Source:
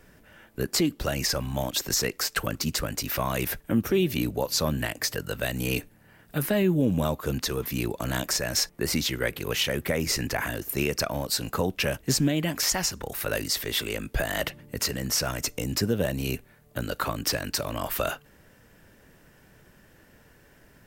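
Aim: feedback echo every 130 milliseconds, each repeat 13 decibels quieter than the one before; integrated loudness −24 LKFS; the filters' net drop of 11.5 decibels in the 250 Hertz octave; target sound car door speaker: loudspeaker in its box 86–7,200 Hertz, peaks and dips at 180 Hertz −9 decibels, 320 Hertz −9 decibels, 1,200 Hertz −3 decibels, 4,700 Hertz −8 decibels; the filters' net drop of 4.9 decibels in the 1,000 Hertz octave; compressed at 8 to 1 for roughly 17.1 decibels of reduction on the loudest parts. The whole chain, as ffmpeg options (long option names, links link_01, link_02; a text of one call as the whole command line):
ffmpeg -i in.wav -af "equalizer=frequency=250:width_type=o:gain=-8.5,equalizer=frequency=1000:width_type=o:gain=-4.5,acompressor=threshold=-39dB:ratio=8,highpass=86,equalizer=frequency=180:width_type=q:width=4:gain=-9,equalizer=frequency=320:width_type=q:width=4:gain=-9,equalizer=frequency=1200:width_type=q:width=4:gain=-3,equalizer=frequency=4700:width_type=q:width=4:gain=-8,lowpass=frequency=7200:width=0.5412,lowpass=frequency=7200:width=1.3066,aecho=1:1:130|260|390:0.224|0.0493|0.0108,volume=21dB" out.wav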